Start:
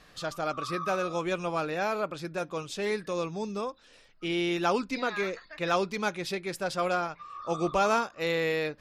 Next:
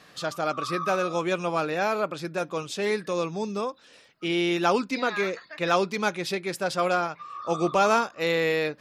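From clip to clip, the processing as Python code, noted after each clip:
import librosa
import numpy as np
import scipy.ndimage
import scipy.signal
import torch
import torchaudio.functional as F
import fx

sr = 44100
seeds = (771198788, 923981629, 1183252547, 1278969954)

y = scipy.signal.sosfilt(scipy.signal.butter(2, 120.0, 'highpass', fs=sr, output='sos'), x)
y = y * librosa.db_to_amplitude(4.0)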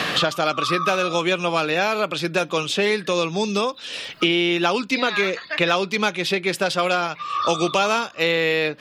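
y = fx.peak_eq(x, sr, hz=3100.0, db=9.0, octaves=0.89)
y = fx.band_squash(y, sr, depth_pct=100)
y = y * librosa.db_to_amplitude(3.0)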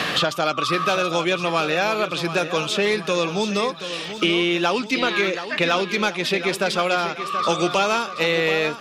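y = 10.0 ** (-6.5 / 20.0) * np.tanh(x / 10.0 ** (-6.5 / 20.0))
y = fx.echo_feedback(y, sr, ms=729, feedback_pct=48, wet_db=-11.0)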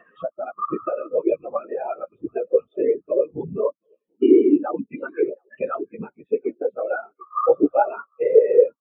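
y = fx.whisperise(x, sr, seeds[0])
y = scipy.signal.sosfilt(scipy.signal.butter(2, 2700.0, 'lowpass', fs=sr, output='sos'), y)
y = fx.spectral_expand(y, sr, expansion=4.0)
y = y * librosa.db_to_amplitude(6.0)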